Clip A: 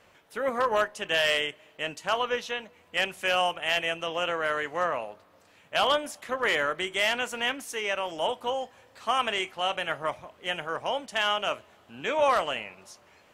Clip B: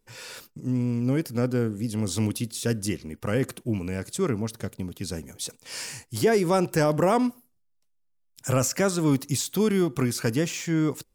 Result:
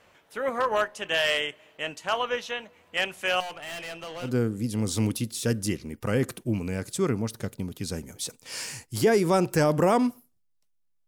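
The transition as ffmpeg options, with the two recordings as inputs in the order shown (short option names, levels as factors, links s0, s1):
-filter_complex "[0:a]asettb=1/sr,asplit=3[s0][s1][s2];[s0]atrim=end=3.404[s3];[s1]atrim=start=3.4:end=4.31,asetpts=PTS-STARTPTS,afade=t=in:d=0.004:c=qsin,afade=t=out:st=0.906:d=0.004:c=qsin,aeval=exprs='(tanh(50.1*val(0)+0.25)-tanh(0.25))/50.1':c=same[s4];[s2]atrim=start=4.306[s5];[s3][s4]acrossfade=d=0.004:c1=hsin:c2=qsin[s6];[s6][s5]acrossfade=d=0.004:c1=qsin:c2=hsin,apad=whole_dur=11.07,atrim=end=11.07,atrim=end=4.31,asetpts=PTS-STARTPTS[s7];[1:a]atrim=start=1.41:end=8.27,asetpts=PTS-STARTPTS[s8];[s7][s8]acrossfade=d=0.1:c1=tri:c2=tri"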